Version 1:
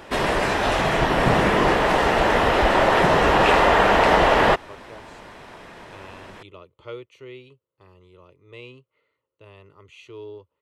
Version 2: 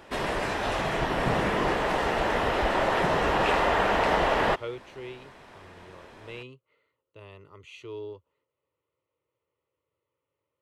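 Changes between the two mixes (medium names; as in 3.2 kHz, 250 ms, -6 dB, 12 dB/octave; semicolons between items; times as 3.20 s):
speech: entry -2.25 s; background -7.5 dB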